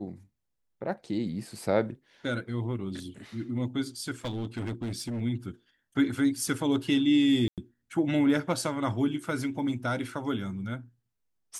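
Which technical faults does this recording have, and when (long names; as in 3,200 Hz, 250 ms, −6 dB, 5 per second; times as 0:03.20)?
0:04.25–0:05.21: clipping −29.5 dBFS
0:07.48–0:07.58: drop-out 97 ms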